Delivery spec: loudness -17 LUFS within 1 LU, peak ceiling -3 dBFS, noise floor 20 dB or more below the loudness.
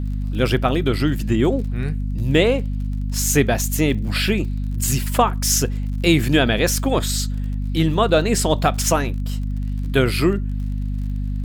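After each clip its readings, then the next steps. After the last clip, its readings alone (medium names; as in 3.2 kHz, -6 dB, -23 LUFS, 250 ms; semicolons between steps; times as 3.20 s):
tick rate 33 per s; hum 50 Hz; highest harmonic 250 Hz; hum level -21 dBFS; loudness -20.0 LUFS; peak level -3.0 dBFS; loudness target -17.0 LUFS
-> de-click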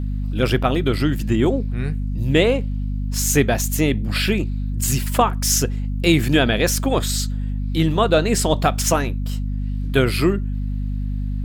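tick rate 1.1 per s; hum 50 Hz; highest harmonic 250 Hz; hum level -21 dBFS
-> hum notches 50/100/150/200/250 Hz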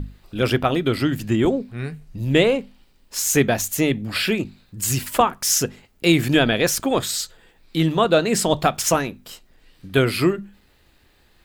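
hum not found; loudness -20.5 LUFS; peak level -3.0 dBFS; loudness target -17.0 LUFS
-> trim +3.5 dB; peak limiter -3 dBFS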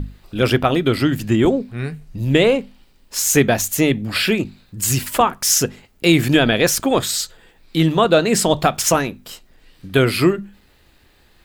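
loudness -17.5 LUFS; peak level -3.0 dBFS; noise floor -54 dBFS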